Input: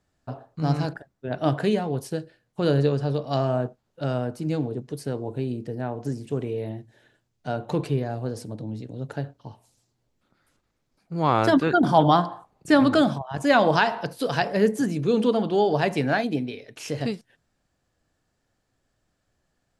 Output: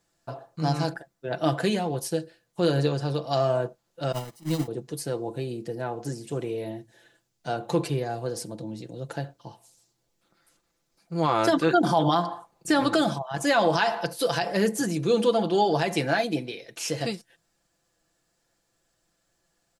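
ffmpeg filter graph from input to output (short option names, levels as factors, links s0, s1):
-filter_complex "[0:a]asettb=1/sr,asplit=3[s0][s1][s2];[s0]atrim=end=4.124[s3];[s1]atrim=start=4.12:end=4.68,asetpts=PTS-STARTPTS,afade=t=in:d=0.004:c=qsin,afade=t=out:st=0.556:d=0.004:c=qsin,aeval=exprs='val(0)+0.5*0.0299*sgn(val(0))':c=same,agate=range=0.0501:threshold=0.0631:ratio=16:release=100:detection=peak,aecho=1:1:1:0.53,atrim=end_sample=24696[s4];[s2]atrim=start=4.676[s5];[s3][s4]acrossfade=d=0.004:c1=hsin:c2=qsin[s6];[s6][s5]acrossfade=d=0.004:c1=qsin:c2=hsin,bass=f=250:g=-6,treble=f=4000:g=7,aecho=1:1:5.9:0.57,alimiter=limit=0.266:level=0:latency=1:release=100"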